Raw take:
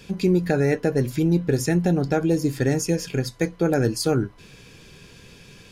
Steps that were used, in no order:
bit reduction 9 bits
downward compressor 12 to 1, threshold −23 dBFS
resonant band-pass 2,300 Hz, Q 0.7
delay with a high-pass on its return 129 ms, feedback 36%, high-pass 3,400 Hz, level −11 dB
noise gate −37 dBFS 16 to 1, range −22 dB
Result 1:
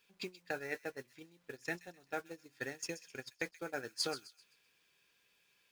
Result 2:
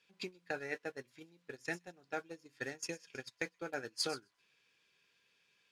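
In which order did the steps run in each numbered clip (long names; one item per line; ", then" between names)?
downward compressor, then resonant band-pass, then bit reduction, then noise gate, then delay with a high-pass on its return
downward compressor, then delay with a high-pass on its return, then bit reduction, then resonant band-pass, then noise gate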